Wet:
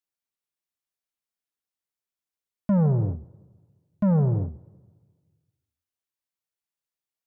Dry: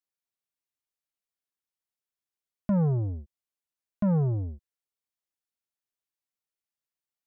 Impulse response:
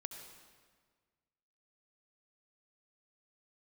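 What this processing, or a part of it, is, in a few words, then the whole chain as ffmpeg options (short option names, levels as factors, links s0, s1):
keyed gated reverb: -filter_complex "[0:a]asplit=3[s0][s1][s2];[1:a]atrim=start_sample=2205[s3];[s1][s3]afir=irnorm=-1:irlink=0[s4];[s2]apad=whole_len=320383[s5];[s4][s5]sidechaingate=range=0.251:threshold=0.0251:ratio=16:detection=peak,volume=1.58[s6];[s0][s6]amix=inputs=2:normalize=0,volume=0.75"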